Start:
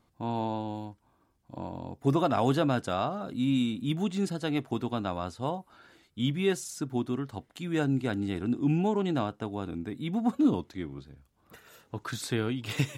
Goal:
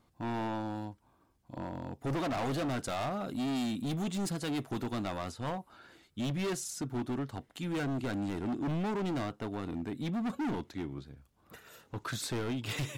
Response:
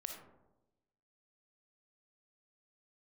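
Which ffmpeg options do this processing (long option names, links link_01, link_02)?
-filter_complex "[0:a]asettb=1/sr,asplit=3[link_01][link_02][link_03];[link_01]atrim=end=2.804[link_04];[link_02]atrim=start=2.8:end=5.32,asetpts=PTS-STARTPTS,afade=type=in:duration=0.004:curve=qsin,afade=type=out:start_time=2.516:duration=0.004:curve=qsin,highshelf=frequency=7100:gain=9[link_05];[link_03]atrim=start=5.316[link_06];[link_04][link_05]acrossfade=duration=0.004:curve1=hsin:curve2=qsin[link_07];[link_07][link_06]acrossfade=duration=0.004:curve1=qsin:curve2=hsin,asoftclip=type=hard:threshold=-31dB"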